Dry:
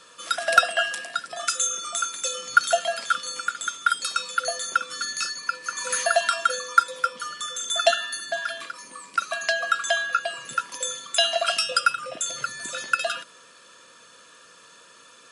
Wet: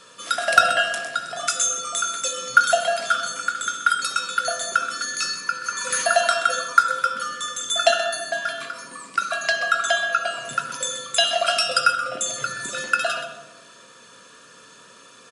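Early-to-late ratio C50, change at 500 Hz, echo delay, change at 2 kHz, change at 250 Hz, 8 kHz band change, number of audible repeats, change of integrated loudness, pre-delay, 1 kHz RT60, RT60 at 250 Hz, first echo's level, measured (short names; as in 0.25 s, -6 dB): 7.5 dB, +3.0 dB, 0.128 s, +3.5 dB, +7.0 dB, +2.5 dB, 1, +3.0 dB, 3 ms, 1.1 s, 1.5 s, -12.0 dB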